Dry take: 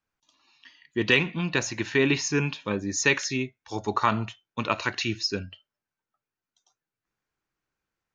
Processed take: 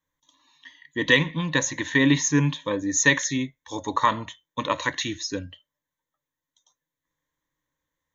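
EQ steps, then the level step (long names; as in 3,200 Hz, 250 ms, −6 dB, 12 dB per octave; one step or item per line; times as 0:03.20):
EQ curve with evenly spaced ripples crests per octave 1.1, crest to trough 14 dB
0.0 dB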